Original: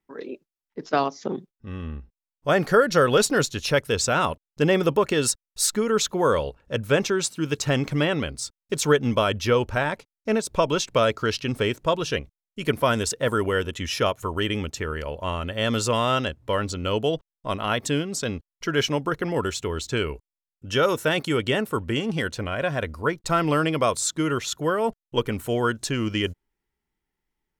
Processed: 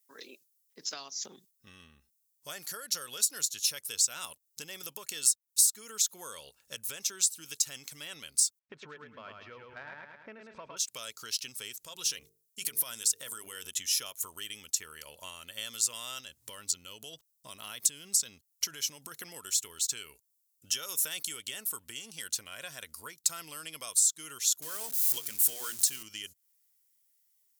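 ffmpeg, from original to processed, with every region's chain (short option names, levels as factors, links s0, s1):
-filter_complex "[0:a]asettb=1/sr,asplit=3[s0][s1][s2];[s0]atrim=end=8.594[s3];[s1]atrim=start=8.59:end=10.77,asetpts=PTS-STARTPTS,afade=t=in:d=0.004:c=qsin,afade=t=out:st=2.176:d=0.004:c=qsin,lowpass=f=2000:w=0.5412,lowpass=f=2000:w=1.3066,acontrast=36,aecho=1:1:108|216|324|432:0.631|0.202|0.0646|0.0207,atrim=end_sample=96138[s4];[s2]atrim=start=10.766[s5];[s3][s4]acrossfade=d=0.004:c1=hsin:c2=qsin[s6];[s6][s5]acrossfade=d=0.004:c1=qsin:c2=hsin,asettb=1/sr,asplit=3[s7][s8][s9];[s7]atrim=end=11.764[s10];[s8]atrim=start=11.76:end=13.67,asetpts=PTS-STARTPTS,afade=t=in:d=0.004:c=qsin,afade=t=out:st=1.906:d=0.004:c=qsin,bandreject=f=50:t=h:w=6,bandreject=f=100:t=h:w=6,bandreject=f=150:t=h:w=6,bandreject=f=200:t=h:w=6,bandreject=f=250:t=h:w=6,bandreject=f=300:t=h:w=6,bandreject=f=350:t=h:w=6,bandreject=f=400:t=h:w=6,bandreject=f=450:t=h:w=6,acompressor=threshold=0.0316:ratio=5:attack=3.2:release=140:knee=1:detection=peak[s11];[s9]atrim=start=13.666[s12];[s10][s11]acrossfade=d=0.004:c1=hsin:c2=qsin[s13];[s13][s12]acrossfade=d=0.004:c1=qsin:c2=hsin,asettb=1/sr,asplit=3[s14][s15][s16];[s14]atrim=end=16.204[s17];[s15]atrim=start=16.2:end=19.16,asetpts=PTS-STARTPTS,afade=t=in:d=0.004:c=qsin,afade=t=out:st=2.956:d=0.004:c=qsin,lowshelf=f=330:g=4,acompressor=threshold=0.0447:ratio=4:attack=3.2:release=140:knee=1:detection=peak[s18];[s16]atrim=start=19.156[s19];[s17][s18]acrossfade=d=0.004:c1=hsin:c2=qsin[s20];[s20][s19]acrossfade=d=0.004:c1=qsin:c2=hsin,asettb=1/sr,asplit=3[s21][s22][s23];[s21]atrim=end=24.624[s24];[s22]atrim=start=24.62:end=26.03,asetpts=PTS-STARTPTS,afade=t=in:d=0.004:c=qsin,afade=t=out:st=1.406:d=0.004:c=qsin,aeval=exprs='val(0)+0.5*0.0299*sgn(val(0))':c=same,bandreject=f=60:t=h:w=6,bandreject=f=120:t=h:w=6,bandreject=f=180:t=h:w=6,bandreject=f=240:t=h:w=6,bandreject=f=300:t=h:w=6,bandreject=f=360:t=h:w=6,bandreject=f=420:t=h:w=6[s25];[s23]atrim=start=26.026[s26];[s24][s25]acrossfade=d=0.004:c1=hsin:c2=qsin[s27];[s27][s26]acrossfade=d=0.004:c1=qsin:c2=hsin,bass=f=250:g=10,treble=f=4000:g=12,acompressor=threshold=0.0447:ratio=16,aderivative,volume=1.88"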